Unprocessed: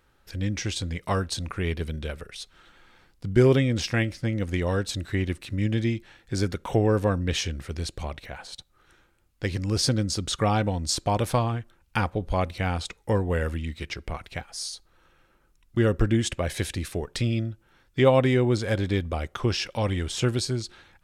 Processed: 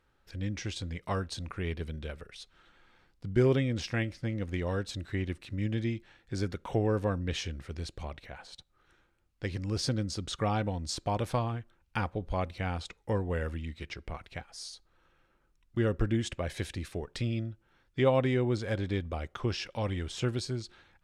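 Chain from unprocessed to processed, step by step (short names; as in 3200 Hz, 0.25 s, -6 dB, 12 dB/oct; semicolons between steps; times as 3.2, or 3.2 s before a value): 4.28–4.71 backlash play -51.5 dBFS; high shelf 8400 Hz -10.5 dB; gain -6.5 dB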